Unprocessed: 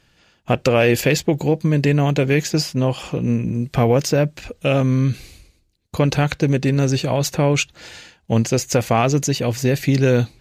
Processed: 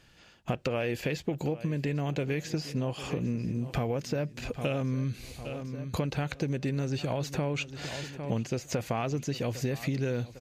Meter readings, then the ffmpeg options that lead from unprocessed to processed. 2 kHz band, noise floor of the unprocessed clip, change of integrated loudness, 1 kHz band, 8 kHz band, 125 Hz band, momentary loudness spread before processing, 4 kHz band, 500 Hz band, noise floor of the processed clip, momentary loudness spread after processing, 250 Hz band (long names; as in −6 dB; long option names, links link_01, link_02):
−13.0 dB, −61 dBFS, −13.5 dB, −13.5 dB, −17.0 dB, −13.0 dB, 6 LU, −13.5 dB, −14.0 dB, −56 dBFS, 5 LU, −13.0 dB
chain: -filter_complex "[0:a]acrossover=split=4100[link_01][link_02];[link_02]acompressor=threshold=-33dB:ratio=4:attack=1:release=60[link_03];[link_01][link_03]amix=inputs=2:normalize=0,asplit=2[link_04][link_05];[link_05]aecho=0:1:803|1606|2409:0.106|0.0466|0.0205[link_06];[link_04][link_06]amix=inputs=2:normalize=0,acompressor=threshold=-27dB:ratio=6,volume=-1.5dB"